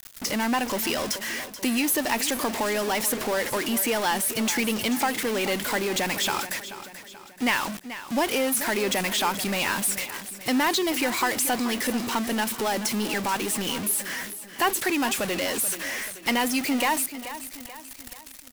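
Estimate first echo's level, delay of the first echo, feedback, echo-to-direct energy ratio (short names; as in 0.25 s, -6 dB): -13.0 dB, 0.433 s, 47%, -12.0 dB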